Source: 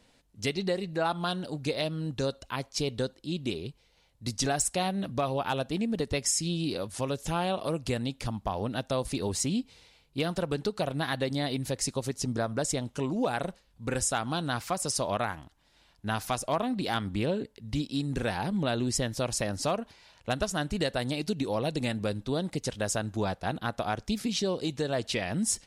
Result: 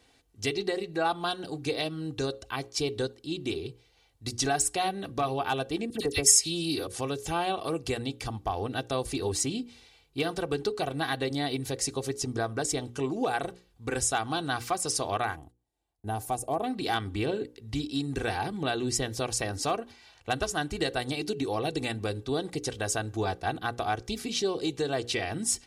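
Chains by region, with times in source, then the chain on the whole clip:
5.9–6.87 high shelf 5600 Hz +11.5 dB + dispersion lows, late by 53 ms, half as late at 1900 Hz
15.36–16.64 gate -58 dBFS, range -17 dB + band shelf 2600 Hz -13 dB 2.6 oct
whole clip: HPF 48 Hz; notches 60/120/180/240/300/360/420/480/540 Hz; comb 2.6 ms, depth 58%

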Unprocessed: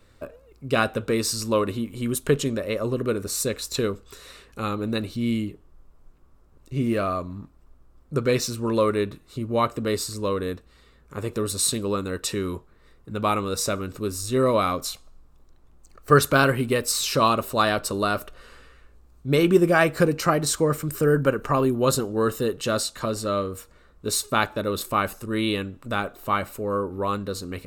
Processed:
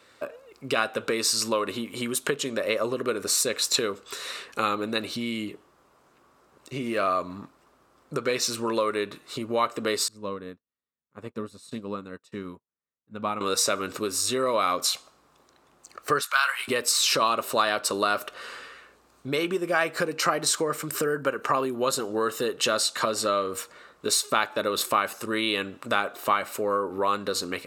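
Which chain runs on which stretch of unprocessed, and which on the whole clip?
10.08–13.41 EQ curve 240 Hz 0 dB, 350 Hz -10 dB, 710 Hz -9 dB, 10000 Hz -19 dB + upward expander 2.5:1, over -52 dBFS
16.21–16.68 HPF 1000 Hz 24 dB/oct + doubler 19 ms -12 dB
whole clip: compressor 6:1, threshold -29 dBFS; weighting filter A; AGC gain up to 4 dB; gain +5.5 dB

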